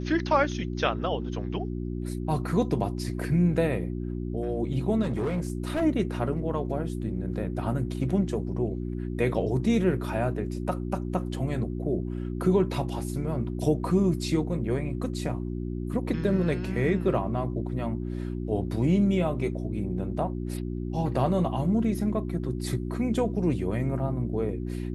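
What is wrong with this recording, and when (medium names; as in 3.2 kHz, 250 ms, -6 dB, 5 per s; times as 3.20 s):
hum 60 Hz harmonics 6 -32 dBFS
5.02–5.82 s: clipped -24 dBFS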